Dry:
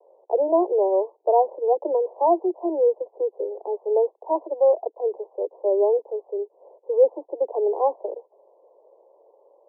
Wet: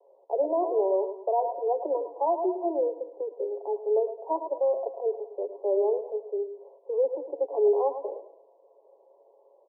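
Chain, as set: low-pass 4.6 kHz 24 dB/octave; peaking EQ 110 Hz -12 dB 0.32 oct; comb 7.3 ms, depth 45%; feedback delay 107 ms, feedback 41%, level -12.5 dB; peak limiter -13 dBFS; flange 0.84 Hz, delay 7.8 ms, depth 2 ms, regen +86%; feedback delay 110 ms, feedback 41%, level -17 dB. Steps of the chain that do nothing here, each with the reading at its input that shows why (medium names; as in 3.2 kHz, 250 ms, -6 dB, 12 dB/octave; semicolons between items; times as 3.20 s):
low-pass 4.6 kHz: input has nothing above 1.1 kHz; peaking EQ 110 Hz: input has nothing below 290 Hz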